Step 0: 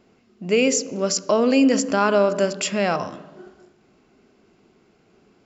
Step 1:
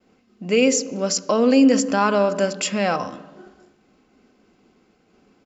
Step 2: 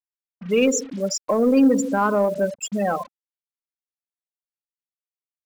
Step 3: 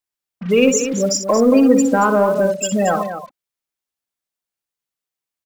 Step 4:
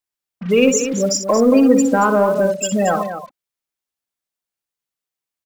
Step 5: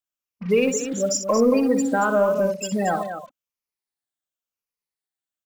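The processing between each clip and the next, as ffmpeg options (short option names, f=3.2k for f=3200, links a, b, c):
-af "agate=range=-33dB:threshold=-56dB:ratio=3:detection=peak,aecho=1:1:3.9:0.34"
-af "afftfilt=real='re*gte(hypot(re,im),0.2)':imag='im*gte(hypot(re,im),0.2)':win_size=1024:overlap=0.75,acrusher=bits=6:mix=0:aa=0.5,aeval=exprs='0.501*(cos(1*acos(clip(val(0)/0.501,-1,1)))-cos(1*PI/2))+0.0158*(cos(5*acos(clip(val(0)/0.501,-1,1)))-cos(5*PI/2))':c=same,volume=-1.5dB"
-filter_complex "[0:a]asplit=2[a][b];[b]acompressor=threshold=-25dB:ratio=6,volume=-0.5dB[c];[a][c]amix=inputs=2:normalize=0,aecho=1:1:61.22|227.4:0.355|0.316,volume=2dB"
-af anull
-af "afftfilt=real='re*pow(10,7/40*sin(2*PI*(0.85*log(max(b,1)*sr/1024/100)/log(2)-(-0.93)*(pts-256)/sr)))':imag='im*pow(10,7/40*sin(2*PI*(0.85*log(max(b,1)*sr/1024/100)/log(2)-(-0.93)*(pts-256)/sr)))':win_size=1024:overlap=0.75,volume=-6dB"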